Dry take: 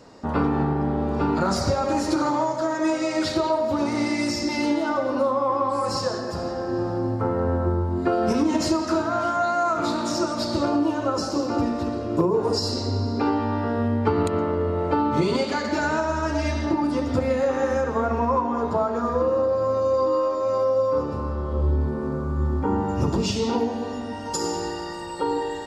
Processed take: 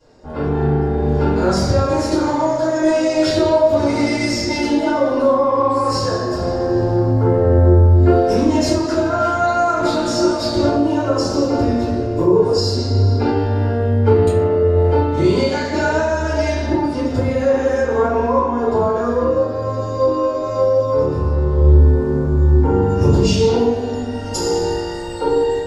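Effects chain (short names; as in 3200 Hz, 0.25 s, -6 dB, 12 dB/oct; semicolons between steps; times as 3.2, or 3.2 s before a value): AGC gain up to 11.5 dB; shoebox room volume 42 m³, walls mixed, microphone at 3.2 m; gain -17.5 dB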